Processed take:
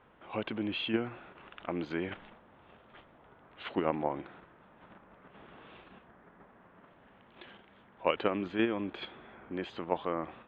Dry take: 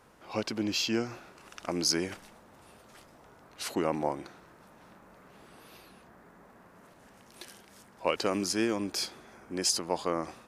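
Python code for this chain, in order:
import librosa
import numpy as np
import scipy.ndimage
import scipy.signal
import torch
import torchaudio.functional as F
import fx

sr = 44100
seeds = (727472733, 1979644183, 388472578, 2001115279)

p1 = scipy.signal.sosfilt(scipy.signal.ellip(4, 1.0, 40, 3400.0, 'lowpass', fs=sr, output='sos'), x)
p2 = fx.level_steps(p1, sr, step_db=14)
p3 = p1 + F.gain(torch.from_numpy(p2), 1.0).numpy()
y = F.gain(torch.from_numpy(p3), -4.5).numpy()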